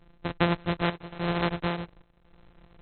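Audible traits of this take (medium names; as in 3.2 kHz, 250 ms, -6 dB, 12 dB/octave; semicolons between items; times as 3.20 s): a buzz of ramps at a fixed pitch in blocks of 256 samples; chopped level 0.89 Hz, depth 65%, duty 80%; aliases and images of a low sample rate 4.8 kHz, jitter 0%; AAC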